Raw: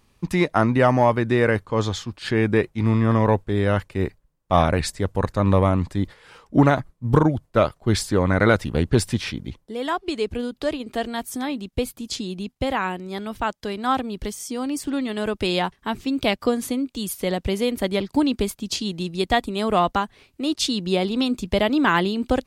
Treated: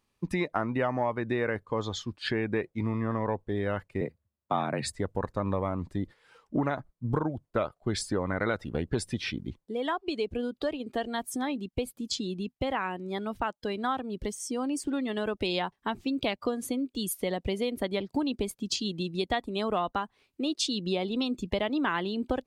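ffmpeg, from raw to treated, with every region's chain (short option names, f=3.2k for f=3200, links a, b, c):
-filter_complex "[0:a]asettb=1/sr,asplit=3[a][b][c];[a]atrim=end=4.014[d];[b]atrim=start=4.01:end=4.93,asetpts=PTS-STARTPTS,afade=t=in:d=0.004:c=qsin,afade=t=out:st=0.916:d=0.004:c=qsin,afreqshift=61,equalizer=f=5.7k:t=o:w=0.21:g=-5.5[e];[c]atrim=start=4.926[f];[d][e]acrossfade=d=0.004:c1=hsin:c2=qsin[g];[g][f]acrossfade=d=0.004:c1=qsin:c2=hsin,afftdn=nr=13:nf=-35,lowshelf=f=170:g=-7.5,acompressor=threshold=-28dB:ratio=3"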